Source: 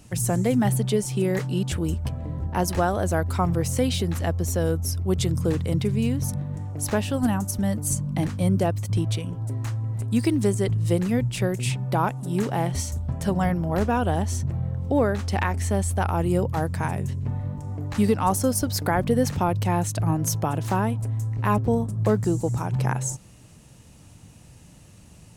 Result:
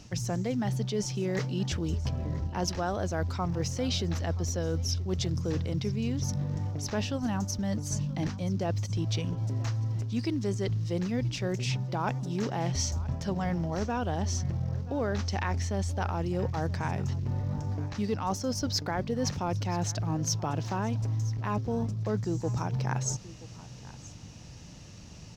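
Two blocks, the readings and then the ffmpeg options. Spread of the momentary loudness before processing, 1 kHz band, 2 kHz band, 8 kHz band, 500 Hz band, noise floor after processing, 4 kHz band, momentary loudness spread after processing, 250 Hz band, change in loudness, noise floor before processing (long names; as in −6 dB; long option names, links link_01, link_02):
6 LU, −8.0 dB, −6.5 dB, −5.5 dB, −8.0 dB, −46 dBFS, −1.0 dB, 3 LU, −7.5 dB, −6.5 dB, −49 dBFS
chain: -af "acrusher=bits=9:mode=log:mix=0:aa=0.000001,areverse,acompressor=threshold=-29dB:ratio=6,areverse,highshelf=frequency=7400:width_type=q:width=3:gain=-10.5,aecho=1:1:978:0.119,volume=1.5dB"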